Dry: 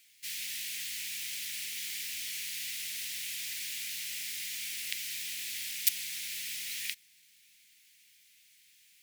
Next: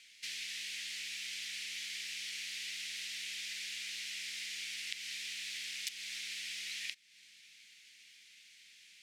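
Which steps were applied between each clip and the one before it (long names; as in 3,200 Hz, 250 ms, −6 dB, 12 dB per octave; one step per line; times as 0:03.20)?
low-pass filter 5,700 Hz 12 dB per octave
parametric band 90 Hz −10.5 dB 1.8 octaves
downward compressor 2.5 to 1, threshold −50 dBFS, peak gain reduction 14 dB
level +7 dB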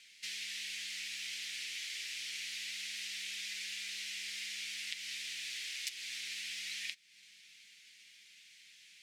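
flanger 0.26 Hz, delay 5 ms, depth 2.4 ms, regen −37%
level +4 dB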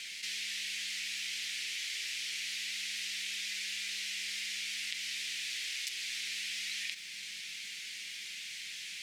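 envelope flattener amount 70%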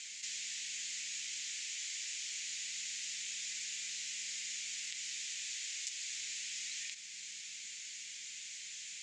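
in parallel at −10.5 dB: soft clipping −28.5 dBFS, distortion −22 dB
on the sum: transistor ladder low-pass 7,500 Hz, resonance 75%
level +1.5 dB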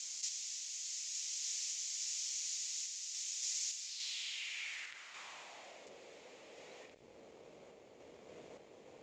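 in parallel at −8 dB: comparator with hysteresis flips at −42 dBFS
on the sum: sample-and-hold tremolo
band-pass filter sweep 5,900 Hz → 500 Hz, 0:03.76–0:05.94
level +6 dB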